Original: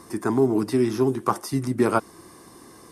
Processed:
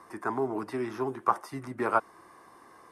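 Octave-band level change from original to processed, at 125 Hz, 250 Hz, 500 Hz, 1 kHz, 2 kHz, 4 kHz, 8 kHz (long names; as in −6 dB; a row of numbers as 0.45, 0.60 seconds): −15.0, −13.0, −9.0, −1.5, −2.0, −13.0, −16.0 decibels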